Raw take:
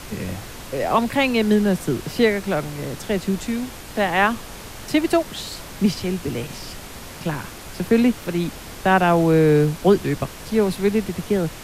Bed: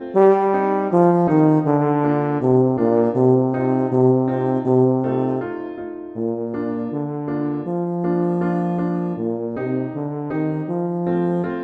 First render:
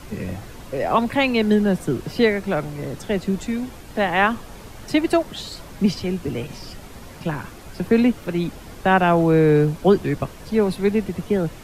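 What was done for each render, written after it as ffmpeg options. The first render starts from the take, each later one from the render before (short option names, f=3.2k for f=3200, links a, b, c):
-af "afftdn=nr=8:nf=-37"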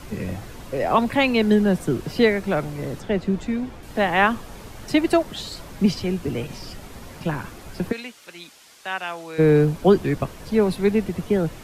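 -filter_complex "[0:a]asettb=1/sr,asplit=3[a][b][c];[a]atrim=end=3.004[d];[b]atrim=start=3:end=3.83,asetpts=PTS-STARTPTS,afade=t=in:d=0.004:c=qsin,afade=t=out:st=0.826:d=0.004:c=qsin,lowpass=f=2.8k:p=1[e];[c]atrim=start=3.826[f];[d][e]acrossfade=d=0.004:c1=hsin:c2=qsin[g];[g][f]acrossfade=d=0.004:c1=qsin:c2=hsin,asplit=3[h][i][j];[h]afade=t=out:st=7.91:d=0.02[k];[i]bandpass=f=6k:t=q:w=0.6,afade=t=in:st=7.91:d=0.02,afade=t=out:st=9.38:d=0.02[l];[j]afade=t=in:st=9.38:d=0.02[m];[k][l][m]amix=inputs=3:normalize=0"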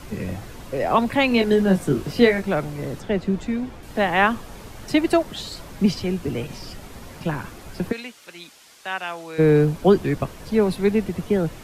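-filter_complex "[0:a]asettb=1/sr,asplit=3[a][b][c];[a]atrim=end=1.294[d];[b]atrim=start=1.29:end=2.42,asetpts=PTS-STARTPTS,afade=t=in:d=0.004:c=qsin,afade=t=out:st=1.126:d=0.004:c=qsin,asplit=2[e][f];[f]adelay=21,volume=-4.5dB[g];[e][g]amix=inputs=2:normalize=0,atrim=end_sample=49833[h];[c]atrim=start=2.416[i];[d][h]acrossfade=d=0.004:c1=hsin:c2=qsin[j];[j][i]acrossfade=d=0.004:c1=qsin:c2=hsin"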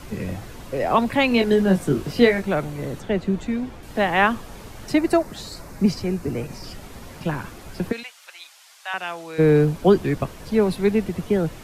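-filter_complex "[0:a]asettb=1/sr,asplit=3[a][b][c];[a]atrim=end=2.444[d];[b]atrim=start=2.44:end=3.52,asetpts=PTS-STARTPTS,afade=t=in:d=0.004:c=qsin,afade=t=out:st=1.076:d=0.004:c=qsin,bandreject=f=5.1k:w=12[e];[c]atrim=start=3.516[f];[d][e]acrossfade=d=0.004:c1=hsin:c2=qsin[g];[g][f]acrossfade=d=0.004:c1=qsin:c2=hsin,asettb=1/sr,asplit=3[h][i][j];[h]atrim=end=4.934[k];[i]atrim=start=4.93:end=6.64,asetpts=PTS-STARTPTS,afade=t=in:d=0.004:c=qsin,afade=t=out:st=1.706:d=0.004:c=qsin,equalizer=f=3.2k:t=o:w=0.49:g=-10.5[l];[j]atrim=start=6.636[m];[k][l]acrossfade=d=0.004:c1=hsin:c2=qsin[n];[n][m]acrossfade=d=0.004:c1=qsin:c2=hsin,asettb=1/sr,asplit=3[o][p][q];[o]atrim=end=8.034[r];[p]atrim=start=8.03:end=8.94,asetpts=PTS-STARTPTS,afade=t=in:d=0.004:c=qsin,afade=t=out:st=0.906:d=0.004:c=qsin,highpass=f=670:w=0.5412,highpass=f=670:w=1.3066[s];[q]atrim=start=8.936[t];[r][s]acrossfade=d=0.004:c1=hsin:c2=qsin[u];[u][t]acrossfade=d=0.004:c1=qsin:c2=hsin"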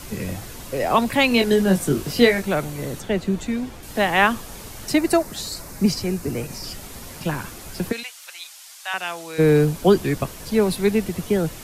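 -af "highshelf=f=4.4k:g=12"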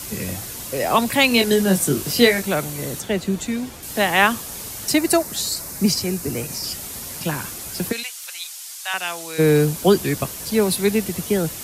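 -af "highpass=56,highshelf=f=4.3k:g=10.5"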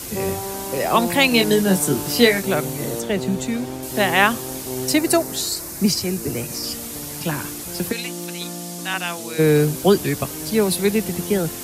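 -filter_complex "[1:a]volume=-13dB[a];[0:a][a]amix=inputs=2:normalize=0"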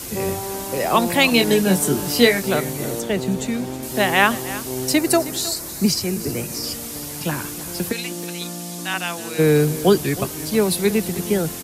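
-af "aecho=1:1:316:0.158"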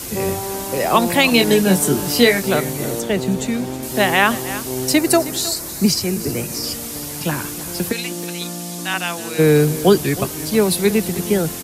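-af "volume=2.5dB,alimiter=limit=-2dB:level=0:latency=1"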